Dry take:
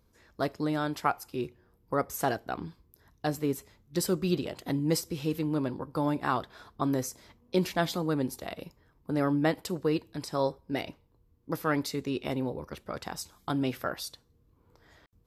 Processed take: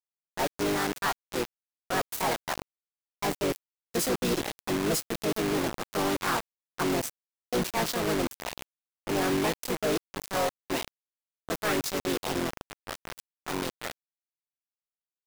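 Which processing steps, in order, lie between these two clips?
fade out at the end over 3.23 s; high-pass 170 Hz 6 dB/octave; harmony voices -3 st -12 dB, +3 st -13 dB, +5 st 0 dB; saturation -20.5 dBFS, distortion -13 dB; bit crusher 5-bit; tape noise reduction on one side only decoder only

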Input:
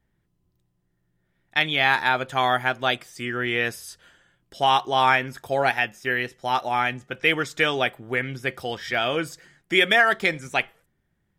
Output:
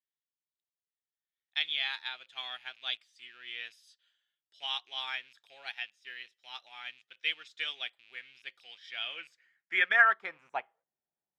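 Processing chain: rattle on loud lows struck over -44 dBFS, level -28 dBFS; band-pass sweep 3.6 kHz -> 750 Hz, 8.82–10.82 s; upward expansion 1.5:1, over -42 dBFS

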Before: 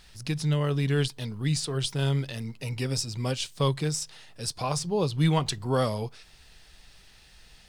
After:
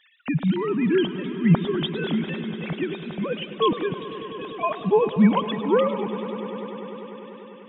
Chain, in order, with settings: formants replaced by sine waves; echo with a slow build-up 99 ms, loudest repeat 5, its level -18 dB; modulated delay 106 ms, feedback 64%, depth 138 cents, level -16 dB; trim +4 dB

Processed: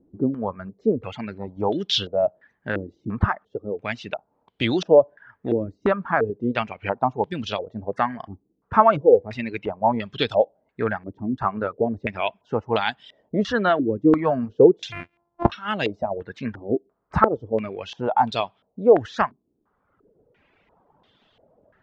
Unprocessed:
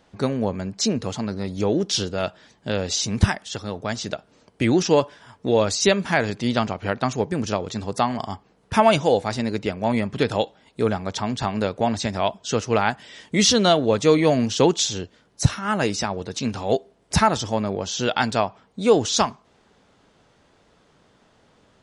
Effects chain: 14.92–15.50 s: sorted samples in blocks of 128 samples; reverb removal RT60 1.1 s; step-sequenced low-pass 2.9 Hz 320–3400 Hz; trim -3.5 dB

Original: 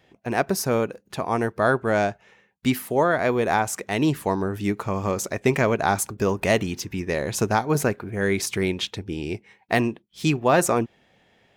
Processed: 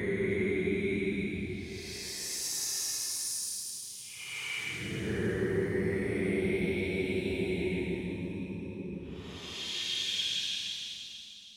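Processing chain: compression, threshold -21 dBFS, peak gain reduction 7.5 dB; Paulstretch 19×, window 0.05 s, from 8.30 s; two-band feedback delay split 2.7 kHz, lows 163 ms, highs 316 ms, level -6 dB; trim -8 dB

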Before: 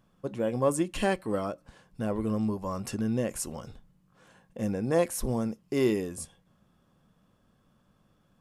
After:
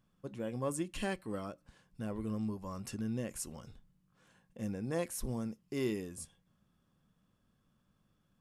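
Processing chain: peaking EQ 640 Hz -5.5 dB 1.9 oct; trim -6.5 dB

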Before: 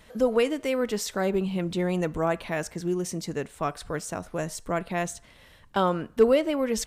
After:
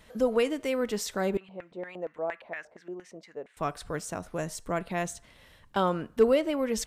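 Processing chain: 1.37–3.57 s: LFO band-pass square 4.3 Hz 590–1900 Hz; trim -2.5 dB

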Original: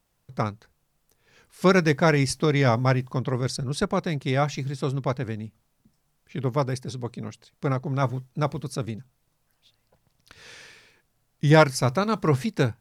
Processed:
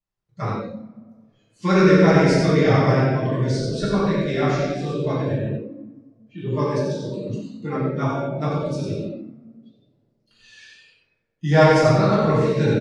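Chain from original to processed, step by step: feedback delay 91 ms, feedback 26%, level -5 dB; reverberation RT60 2.2 s, pre-delay 3 ms, DRR -10.5 dB; spectral noise reduction 17 dB; low-pass 7.7 kHz 24 dB/octave; trim -8.5 dB

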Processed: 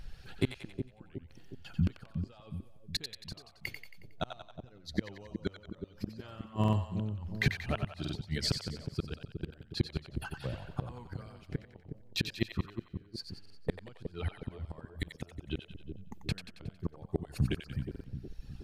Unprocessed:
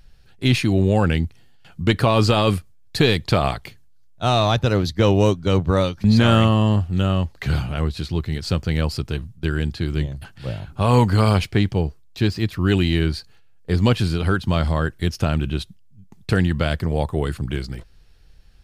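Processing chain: reverb removal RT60 1.6 s; inverted gate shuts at -14 dBFS, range -38 dB; peak limiter -23 dBFS, peak gain reduction 11.5 dB; tremolo triangle 0.83 Hz, depth 85%; treble shelf 5.1 kHz -5.5 dB; on a send: two-band feedback delay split 590 Hz, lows 365 ms, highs 91 ms, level -7 dB; on the sum: buffer glitch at 6.59/8.00/13.41/17.90 s, samples 2048, times 2; trim +8 dB

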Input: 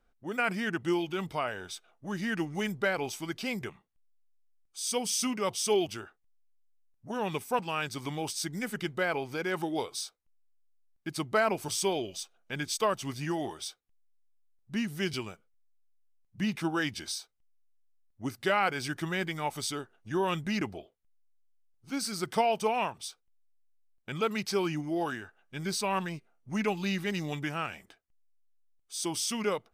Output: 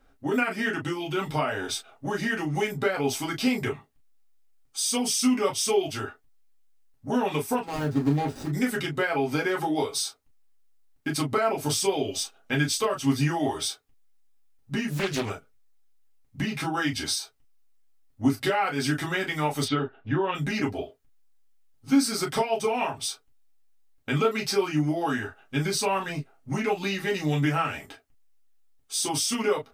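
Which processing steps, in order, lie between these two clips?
7.65–8.53 s: median filter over 41 samples; 19.64–20.35 s: low-pass 3.4 kHz 24 dB/octave; compression 6:1, threshold -35 dBFS, peak gain reduction 13.5 dB; reverberation, pre-delay 4 ms, DRR -2 dB; 14.90–15.30 s: loudspeaker Doppler distortion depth 0.62 ms; trim +8 dB

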